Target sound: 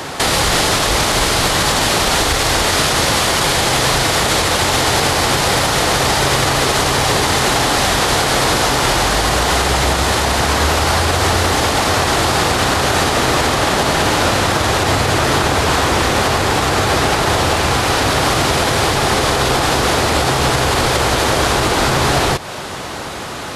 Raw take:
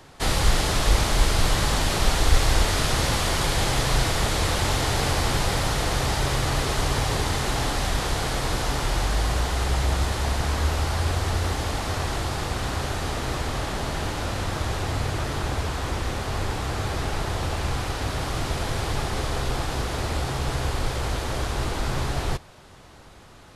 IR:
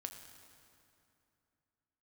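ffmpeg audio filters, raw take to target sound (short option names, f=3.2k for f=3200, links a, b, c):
-af "highpass=f=230:p=1,acompressor=threshold=-35dB:ratio=6,alimiter=level_in=28.5dB:limit=-1dB:release=50:level=0:latency=1,volume=-4dB"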